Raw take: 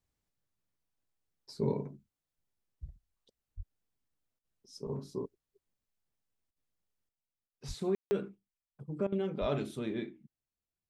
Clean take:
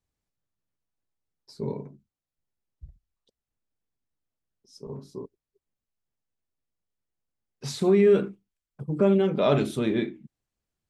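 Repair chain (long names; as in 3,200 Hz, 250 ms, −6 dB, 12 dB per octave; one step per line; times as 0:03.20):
high-pass at the plosives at 0:03.56/0:07.67/0:09.40
ambience match 0:07.95–0:08.11
repair the gap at 0:04.39/0:06.51/0:07.48/0:09.07, 51 ms
level 0 dB, from 0:07.09 +11 dB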